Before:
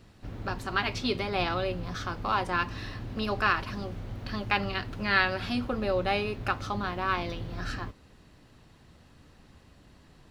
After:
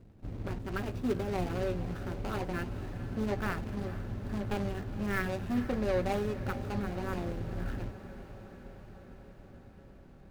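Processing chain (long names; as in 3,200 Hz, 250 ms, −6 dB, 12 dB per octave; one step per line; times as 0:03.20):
running median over 41 samples
feedback delay with all-pass diffusion 466 ms, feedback 72%, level −14 dB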